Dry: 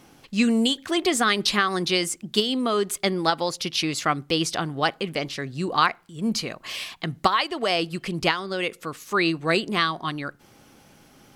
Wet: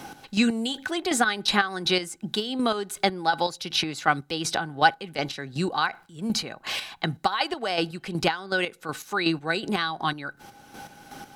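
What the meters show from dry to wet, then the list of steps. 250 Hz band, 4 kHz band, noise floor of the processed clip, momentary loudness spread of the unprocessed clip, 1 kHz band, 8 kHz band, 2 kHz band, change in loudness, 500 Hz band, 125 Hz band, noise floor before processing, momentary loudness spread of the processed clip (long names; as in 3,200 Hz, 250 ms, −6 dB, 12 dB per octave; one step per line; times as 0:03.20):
−3.0 dB, −2.0 dB, −55 dBFS, 9 LU, −0.5 dB, −3.0 dB, 0.0 dB, −2.0 dB, −3.5 dB, −2.5 dB, −55 dBFS, 8 LU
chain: square-wave tremolo 2.7 Hz, depth 60%, duty 35%
hollow resonant body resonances 810/1,500/3,900 Hz, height 13 dB, ringing for 50 ms
multiband upward and downward compressor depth 40%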